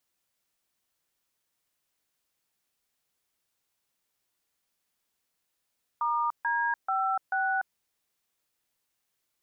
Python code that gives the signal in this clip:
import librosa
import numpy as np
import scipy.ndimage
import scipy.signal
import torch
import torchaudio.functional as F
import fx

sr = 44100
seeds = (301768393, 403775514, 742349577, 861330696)

y = fx.dtmf(sr, digits='*D56', tone_ms=293, gap_ms=144, level_db=-27.5)